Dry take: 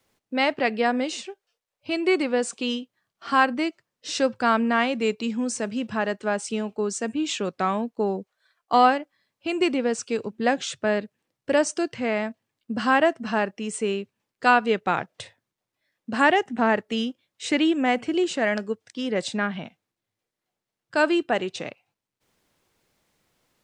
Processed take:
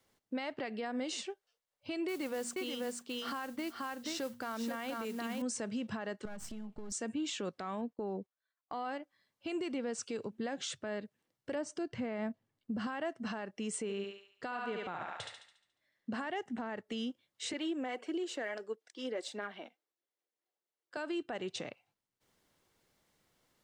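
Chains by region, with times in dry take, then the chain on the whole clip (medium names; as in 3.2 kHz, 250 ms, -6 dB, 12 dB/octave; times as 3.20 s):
2.08–5.42 s: hum notches 60/120/180/240 Hz + modulation noise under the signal 18 dB + delay 481 ms -6.5 dB
6.25–6.92 s: partial rectifier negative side -12 dB + resonant low shelf 250 Hz +8 dB, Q 1.5 + compression 16:1, threshold -34 dBFS
7.81–8.85 s: low-pass 3.5 kHz 6 dB/octave + gate -49 dBFS, range -18 dB
11.55–12.87 s: tilt EQ -2 dB/octave + short-mantissa float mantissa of 8-bit
13.82–16.27 s: treble shelf 5.4 kHz -7 dB + thinning echo 71 ms, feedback 51%, high-pass 560 Hz, level -3 dB
17.53–20.97 s: phaser 1.6 Hz, delay 4.4 ms, feedback 38% + ladder high-pass 290 Hz, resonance 30%
whole clip: compression 4:1, threshold -27 dBFS; peak limiter -25 dBFS; band-stop 2.5 kHz, Q 16; trim -4.5 dB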